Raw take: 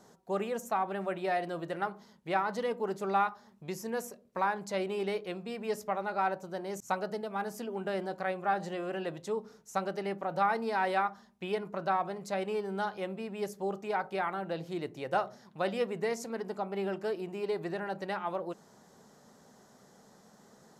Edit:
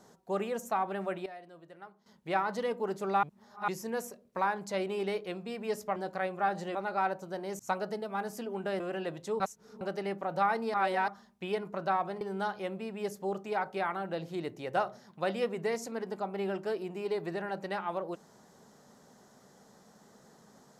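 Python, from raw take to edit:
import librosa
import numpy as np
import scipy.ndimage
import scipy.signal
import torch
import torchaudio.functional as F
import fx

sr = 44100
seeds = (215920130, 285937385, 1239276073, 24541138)

y = fx.edit(x, sr, fx.fade_down_up(start_s=0.91, length_s=1.5, db=-16.0, fade_s=0.35, curve='log'),
    fx.reverse_span(start_s=3.23, length_s=0.45),
    fx.move(start_s=8.01, length_s=0.79, to_s=5.96),
    fx.reverse_span(start_s=9.4, length_s=0.41),
    fx.reverse_span(start_s=10.74, length_s=0.34),
    fx.cut(start_s=12.21, length_s=0.38), tone=tone)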